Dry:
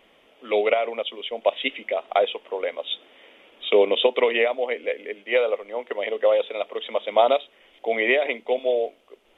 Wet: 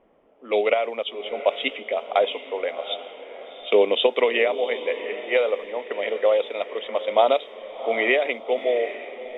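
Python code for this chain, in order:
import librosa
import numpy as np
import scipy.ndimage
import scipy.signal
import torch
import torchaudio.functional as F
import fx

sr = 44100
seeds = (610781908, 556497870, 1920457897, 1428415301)

y = fx.env_lowpass(x, sr, base_hz=890.0, full_db=-20.0)
y = fx.echo_diffused(y, sr, ms=730, feedback_pct=43, wet_db=-12.5)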